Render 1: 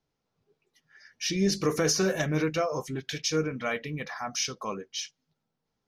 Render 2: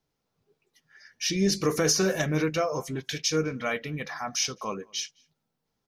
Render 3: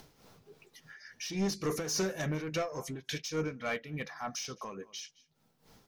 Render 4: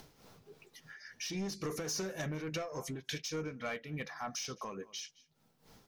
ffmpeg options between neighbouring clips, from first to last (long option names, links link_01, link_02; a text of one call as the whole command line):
ffmpeg -i in.wav -filter_complex "[0:a]highshelf=frequency=7100:gain=4.5,asplit=2[link_01][link_02];[link_02]adelay=209.9,volume=-28dB,highshelf=frequency=4000:gain=-4.72[link_03];[link_01][link_03]amix=inputs=2:normalize=0,volume=1dB" out.wav
ffmpeg -i in.wav -af "acompressor=mode=upward:threshold=-34dB:ratio=2.5,asoftclip=type=tanh:threshold=-22.5dB,tremolo=f=3.5:d=0.64,volume=-2.5dB" out.wav
ffmpeg -i in.wav -af "acompressor=threshold=-35dB:ratio=10" out.wav